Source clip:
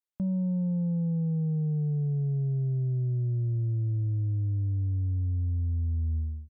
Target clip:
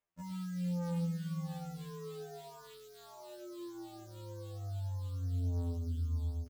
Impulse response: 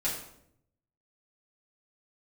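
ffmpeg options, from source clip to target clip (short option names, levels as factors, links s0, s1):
-af "areverse,acompressor=mode=upward:threshold=0.0282:ratio=2.5,areverse,acrusher=samples=9:mix=1:aa=0.000001:lfo=1:lforange=5.4:lforate=3.4,asoftclip=type=tanh:threshold=0.0126,aecho=1:1:112|690:0.282|0.335,afftfilt=real='re*2*eq(mod(b,4),0)':imag='im*2*eq(mod(b,4),0)':win_size=2048:overlap=0.75"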